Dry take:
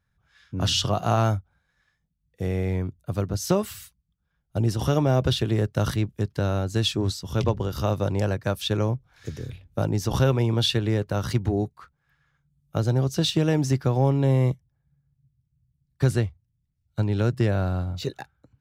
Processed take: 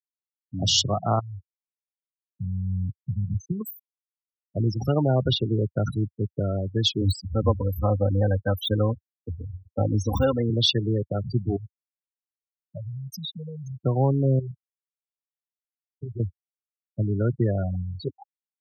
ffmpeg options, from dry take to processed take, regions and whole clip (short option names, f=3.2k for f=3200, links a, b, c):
-filter_complex "[0:a]asettb=1/sr,asplit=3[a][b][c];[a]atrim=end=1.194[d];[b]atrim=start=1.19:end=3.61,asetpts=PTS-STARTPTS,afade=t=in:d=0.004:c=qsin,afade=t=out:st=2.416:d=0.004:c=qsin,acompressor=threshold=-40dB:ratio=2.5:attack=3.2:release=140:knee=1:detection=peak,asubboost=boost=11:cutoff=220[e];[c]atrim=start=3.606[f];[d][e]acrossfade=d=0.004:c1=hsin:c2=qsin[g];[g][f]acrossfade=d=0.004:c1=qsin:c2=hsin,asettb=1/sr,asplit=3[h][i][j];[h]atrim=end=7.014[k];[i]atrim=start=7.01:end=10.5,asetpts=PTS-STARTPTS,afade=t=in:d=0.004:c=qsin,afade=t=out:st=3.486:d=0.004:c=qsin,deesser=0.75,lowshelf=f=130:t=q:w=1.5:g=8,aecho=1:1:3.9:0.8,atrim=end_sample=153909[l];[j]atrim=start=10.496[m];[k][l]acrossfade=d=0.004:c1=hsin:c2=qsin[n];[n][m]acrossfade=d=0.004:c1=qsin:c2=hsin,asettb=1/sr,asplit=3[o][p][q];[o]atrim=end=11.564[r];[p]atrim=start=11.56:end=13.82,asetpts=PTS-STARTPTS,afade=t=in:d=0.004:c=qsin,afade=t=out:st=2.256:d=0.004:c=qsin,acompressor=threshold=-33dB:ratio=5:attack=3.2:release=140:knee=1:detection=peak,aecho=1:1:1.6:0.75,atrim=end_sample=99666[s];[q]atrim=start=13.816[t];[r][s]acrossfade=d=0.004:c1=hsin:c2=qsin[u];[u][t]acrossfade=d=0.004:c1=qsin:c2=hsin,asettb=1/sr,asplit=3[v][w][x];[v]atrim=end=14.394[y];[w]atrim=start=14.39:end=16.2,asetpts=PTS-STARTPTS,afade=t=in:d=0.004:c=qsin,afade=t=out:st=1.806:d=0.004:c=qsin,asplit=2[z][aa];[aa]adelay=18,volume=-6dB[ab];[z][ab]amix=inputs=2:normalize=0,atrim=end_sample=79821,acompressor=threshold=-34dB:ratio=2.5:attack=3.2:release=140:knee=1:detection=peak[ac];[x]atrim=start=16.196[ad];[y][ac]acrossfade=d=0.004:c1=hsin:c2=qsin[ae];[ae][ad]acrossfade=d=0.004:c1=qsin:c2=hsin,aemphasis=mode=production:type=50fm,afftfilt=real='re*gte(hypot(re,im),0.112)':imag='im*gte(hypot(re,im),0.112)':win_size=1024:overlap=0.75,highpass=f=85:w=0.5412,highpass=f=85:w=1.3066"